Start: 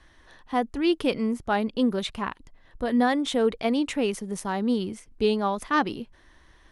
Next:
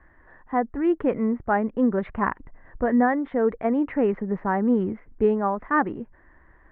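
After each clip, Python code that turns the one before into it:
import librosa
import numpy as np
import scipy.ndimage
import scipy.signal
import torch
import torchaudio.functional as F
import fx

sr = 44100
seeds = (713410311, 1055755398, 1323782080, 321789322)

y = scipy.signal.sosfilt(scipy.signal.cheby1(4, 1.0, 1900.0, 'lowpass', fs=sr, output='sos'), x)
y = fx.rider(y, sr, range_db=10, speed_s=0.5)
y = y * 10.0 ** (3.0 / 20.0)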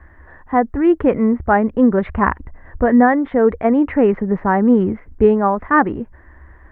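y = fx.peak_eq(x, sr, hz=71.0, db=13.5, octaves=0.55)
y = y * 10.0 ** (8.0 / 20.0)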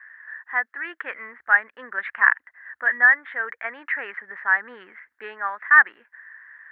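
y = fx.highpass_res(x, sr, hz=1700.0, q=5.1)
y = y * 10.0 ** (-4.5 / 20.0)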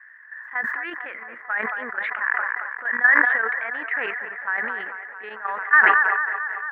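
y = fx.level_steps(x, sr, step_db=12)
y = fx.echo_wet_bandpass(y, sr, ms=223, feedback_pct=78, hz=950.0, wet_db=-9.0)
y = fx.sustainer(y, sr, db_per_s=26.0)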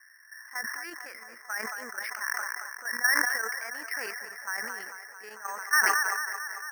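y = np.repeat(scipy.signal.resample_poly(x, 1, 6), 6)[:len(x)]
y = y * 10.0 ** (-8.5 / 20.0)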